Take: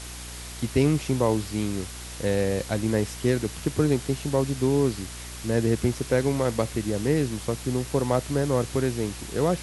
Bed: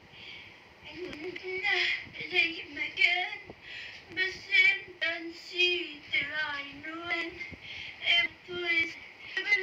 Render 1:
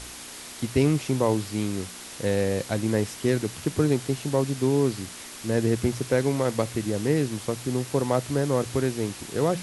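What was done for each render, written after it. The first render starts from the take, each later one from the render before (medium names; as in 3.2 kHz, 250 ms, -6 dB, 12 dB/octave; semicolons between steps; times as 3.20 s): de-hum 60 Hz, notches 3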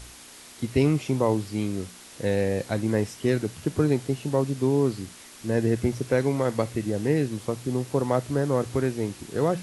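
noise print and reduce 6 dB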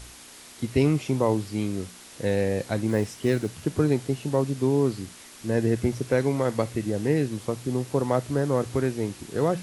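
2.89–3.62 s: block-companded coder 7-bit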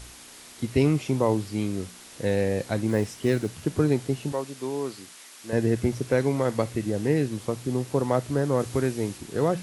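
4.32–5.53 s: high-pass 770 Hz 6 dB/octave; 8.59–9.18 s: treble shelf 4.9 kHz +4.5 dB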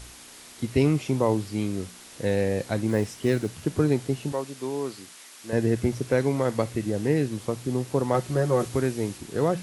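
8.14–8.68 s: comb 5.5 ms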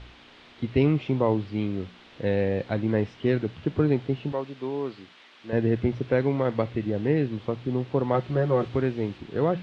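Chebyshev low-pass 3.4 kHz, order 3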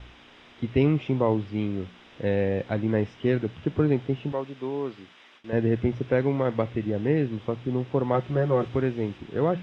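band-stop 4.3 kHz, Q 5; gate with hold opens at -44 dBFS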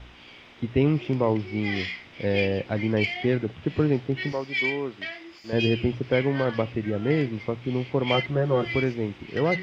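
add bed -4 dB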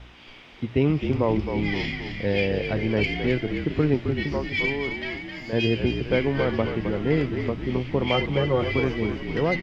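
frequency-shifting echo 263 ms, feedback 57%, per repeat -48 Hz, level -7 dB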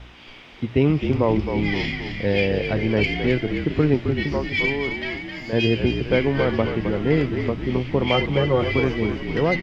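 trim +3 dB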